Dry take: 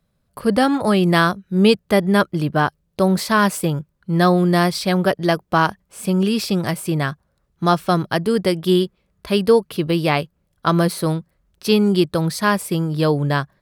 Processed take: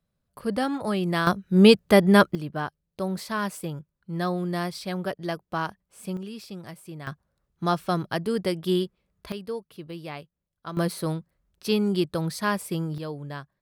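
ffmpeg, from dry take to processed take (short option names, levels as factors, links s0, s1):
-af "asetnsamples=n=441:p=0,asendcmd='1.27 volume volume -0.5dB;2.35 volume volume -12.5dB;6.17 volume volume -19dB;7.07 volume volume -8dB;9.32 volume volume -19dB;10.77 volume volume -8dB;12.98 volume volume -17dB',volume=0.316"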